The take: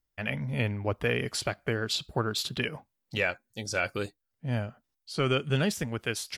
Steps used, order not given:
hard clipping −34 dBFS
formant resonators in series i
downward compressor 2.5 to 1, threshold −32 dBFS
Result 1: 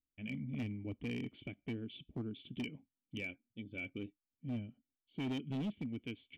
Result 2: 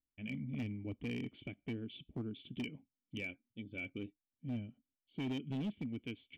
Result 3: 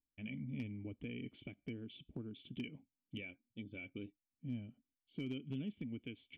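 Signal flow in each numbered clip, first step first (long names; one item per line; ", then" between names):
formant resonators in series, then hard clipping, then downward compressor
formant resonators in series, then downward compressor, then hard clipping
downward compressor, then formant resonators in series, then hard clipping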